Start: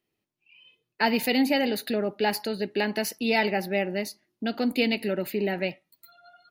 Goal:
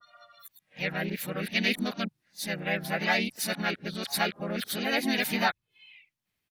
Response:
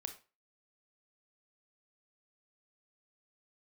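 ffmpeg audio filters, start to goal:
-filter_complex "[0:a]areverse,equalizer=frequency=390:width_type=o:width=1.6:gain=-14,bandreject=frequency=50:width_type=h:width=6,bandreject=frequency=100:width_type=h:width=6,bandreject=frequency=150:width_type=h:width=6,asplit=3[link_01][link_02][link_03];[link_02]asetrate=37084,aresample=44100,atempo=1.18921,volume=-1dB[link_04];[link_03]asetrate=58866,aresample=44100,atempo=0.749154,volume=-12dB[link_05];[link_01][link_04][link_05]amix=inputs=3:normalize=0,adynamicequalizer=threshold=0.0126:dfrequency=1600:dqfactor=0.7:tfrequency=1600:tqfactor=0.7:attack=5:release=100:ratio=0.375:range=2:mode=cutabove:tftype=highshelf"

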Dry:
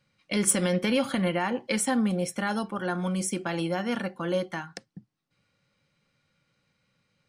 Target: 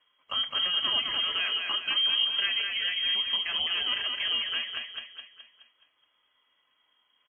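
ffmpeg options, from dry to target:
ffmpeg -i in.wav -filter_complex "[0:a]alimiter=limit=-20.5dB:level=0:latency=1:release=191,aphaser=in_gain=1:out_gain=1:delay=2.4:decay=0.22:speed=0.41:type=sinusoidal,asplit=2[link_01][link_02];[link_02]aecho=0:1:211|422|633|844|1055|1266:0.631|0.303|0.145|0.0698|0.0335|0.0161[link_03];[link_01][link_03]amix=inputs=2:normalize=0,lowpass=frequency=2900:width_type=q:width=0.5098,lowpass=frequency=2900:width_type=q:width=0.6013,lowpass=frequency=2900:width_type=q:width=0.9,lowpass=frequency=2900:width_type=q:width=2.563,afreqshift=-3400" -ar 16000 -c:a wmav2 -b:a 32k out.wma

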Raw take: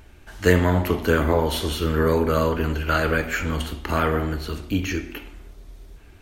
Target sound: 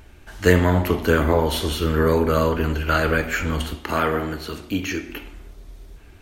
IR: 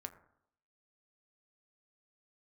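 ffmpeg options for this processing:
-filter_complex "[0:a]asettb=1/sr,asplit=3[link_01][link_02][link_03];[link_01]atrim=end=3.764[link_04];[link_02]atrim=start=3.76:end=5.09,asetpts=PTS-STARTPTS,afade=type=in:duration=0.004:curve=qsin,afade=type=out:start_time=1.326:duration=0.004:curve=qsin,highpass=frequency=190:poles=1[link_05];[link_03]atrim=start=5.086[link_06];[link_04][link_05]acrossfade=duration=0.004:curve1=hsin:curve2=qsin[link_07];[link_07][link_06]acrossfade=duration=0.004:curve1=qsin:curve2=hsin,volume=1.5dB"

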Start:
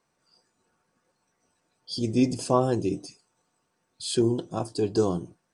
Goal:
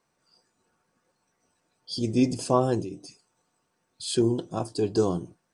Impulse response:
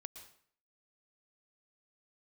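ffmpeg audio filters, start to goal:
-filter_complex "[0:a]asplit=3[link_01][link_02][link_03];[link_01]afade=type=out:start_time=2.83:duration=0.02[link_04];[link_02]acompressor=threshold=-33dB:ratio=6,afade=type=in:start_time=2.83:duration=0.02,afade=type=out:start_time=4.06:duration=0.02[link_05];[link_03]afade=type=in:start_time=4.06:duration=0.02[link_06];[link_04][link_05][link_06]amix=inputs=3:normalize=0"

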